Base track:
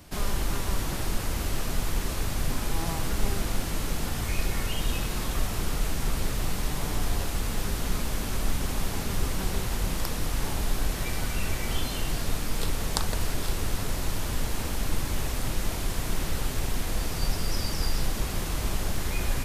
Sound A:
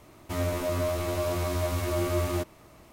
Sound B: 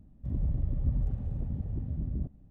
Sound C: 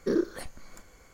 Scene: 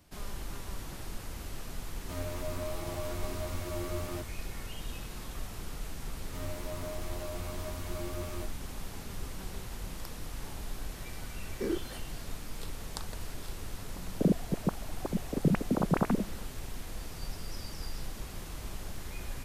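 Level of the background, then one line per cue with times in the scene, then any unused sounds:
base track -12 dB
1.79 s: add A -10 dB
6.03 s: add A -12.5 dB
11.54 s: add C -7 dB
13.95 s: add B + formants replaced by sine waves

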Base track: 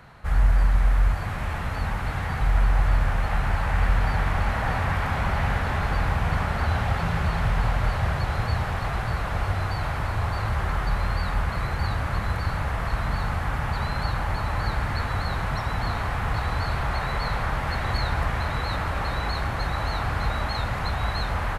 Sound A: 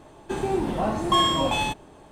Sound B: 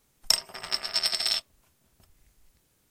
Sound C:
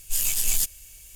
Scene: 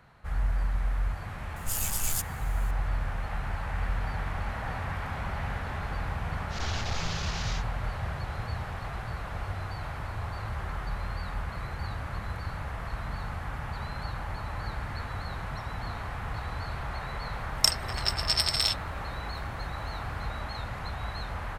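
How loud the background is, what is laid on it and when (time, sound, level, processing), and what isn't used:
base track -9 dB
1.56 s: add C -7 dB
6.49 s: add C -11 dB, fades 0.10 s + one-bit delta coder 32 kbps, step -19 dBFS
17.34 s: add B
not used: A

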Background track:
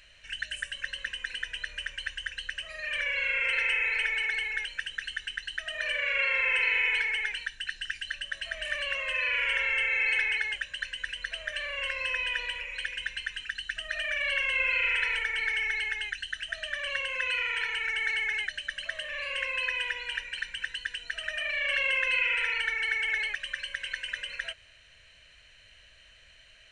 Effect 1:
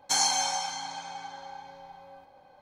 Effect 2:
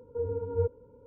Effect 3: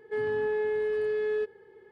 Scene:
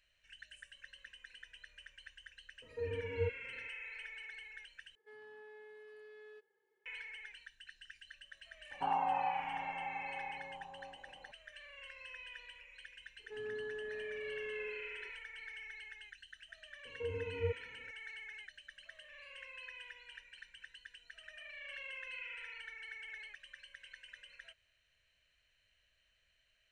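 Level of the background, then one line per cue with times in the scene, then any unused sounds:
background track -19.5 dB
2.62 s: add 2 -7.5 dB
4.95 s: replace with 3 -17 dB + high-pass 1.4 kHz 6 dB/octave
8.71 s: add 1 -2 dB + steep low-pass 1.2 kHz
13.19 s: add 3 -16.5 dB + spring tank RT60 1.4 s, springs 34/47 ms, DRR -2 dB
16.85 s: add 2 -8 dB

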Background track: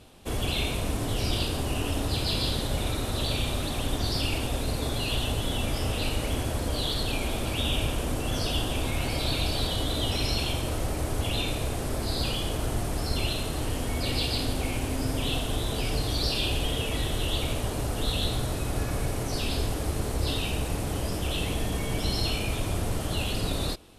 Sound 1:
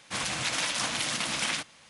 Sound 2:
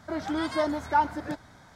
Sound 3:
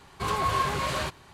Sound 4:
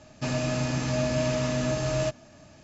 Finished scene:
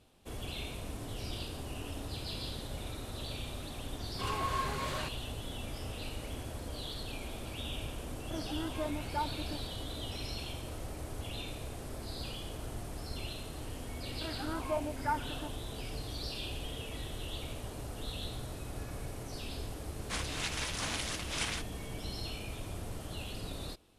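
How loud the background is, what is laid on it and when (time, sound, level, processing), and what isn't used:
background track -12.5 dB
3.99 s: add 3 -8.5 dB
8.22 s: add 2 -13 dB + tilt EQ -2.5 dB/octave
14.13 s: add 2 -12 dB + LFO low-pass saw down 1.2 Hz 570–2800 Hz
19.99 s: add 1 -3 dB + random flutter of the level
not used: 4

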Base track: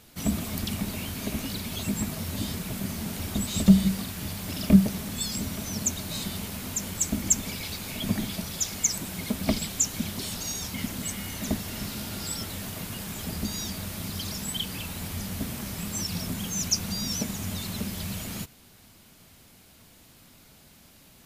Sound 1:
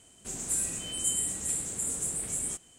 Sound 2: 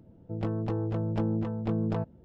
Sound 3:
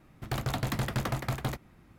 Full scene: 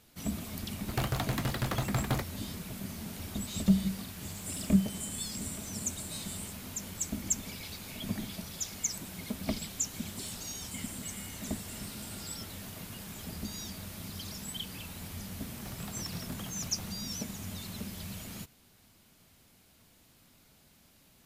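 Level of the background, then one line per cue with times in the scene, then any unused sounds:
base track -8 dB
0.66 s: add 3 -0.5 dB + gain riding within 5 dB
3.96 s: add 1 -12 dB
9.67 s: add 1 -17 dB + buffer glitch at 1.21/2.25 s
15.34 s: add 3 -15 dB
not used: 2

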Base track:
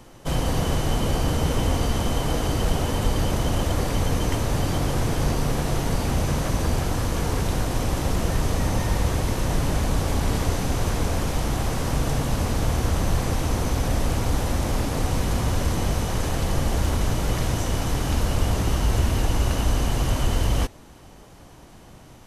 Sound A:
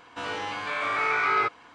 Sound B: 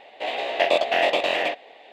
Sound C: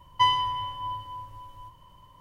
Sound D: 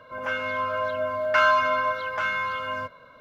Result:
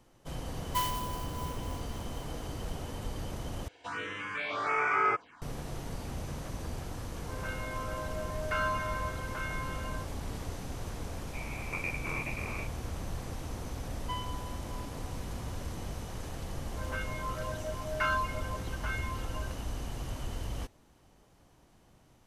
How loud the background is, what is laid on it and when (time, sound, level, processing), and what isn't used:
base track -15.5 dB
0.55 s: add C -10 dB + sampling jitter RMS 0.052 ms
3.68 s: replace with A -2 dB + touch-sensitive phaser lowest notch 170 Hz, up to 4 kHz, full sweep at -22.5 dBFS
7.17 s: add D -12.5 dB
11.13 s: add B -17 dB + frequency inversion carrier 3 kHz
13.89 s: add C -17.5 dB
16.66 s: add D -9.5 dB + reverb removal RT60 1.9 s

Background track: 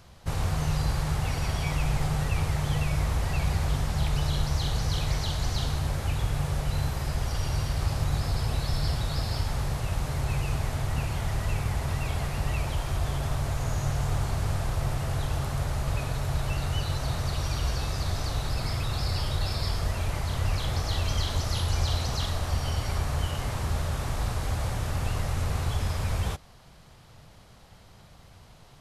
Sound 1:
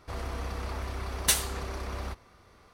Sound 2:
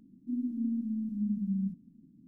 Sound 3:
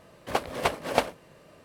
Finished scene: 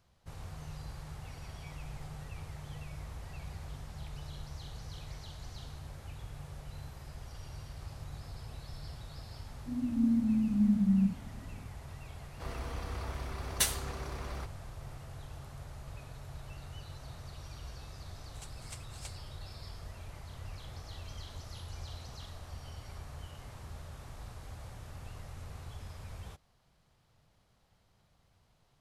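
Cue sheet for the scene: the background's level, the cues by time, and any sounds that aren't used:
background track -17.5 dB
9.39 s: add 2 -9 dB + level rider gain up to 14 dB
12.32 s: add 1 -5 dB
18.07 s: add 3 -3 dB + band-pass filter 7.8 kHz, Q 3.1

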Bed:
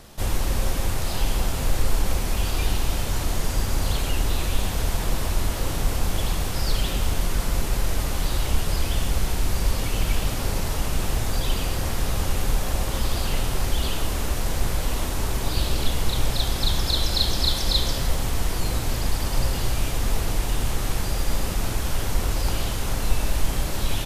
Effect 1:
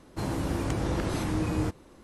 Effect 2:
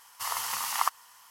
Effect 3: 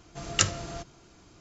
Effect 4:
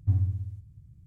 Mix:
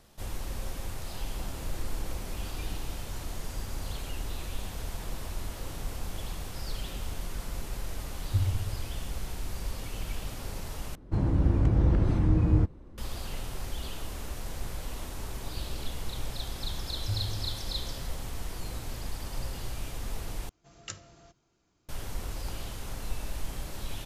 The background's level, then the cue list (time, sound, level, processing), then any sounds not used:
bed -12.5 dB
1.23 s: add 1 -7.5 dB + compression, threshold -38 dBFS
8.26 s: add 4 -3 dB
10.95 s: replace with 1 -5.5 dB + RIAA curve playback
17.00 s: add 4 + feedback comb 52 Hz, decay 0.5 s, mix 100%
20.49 s: replace with 3 -17.5 dB
not used: 2

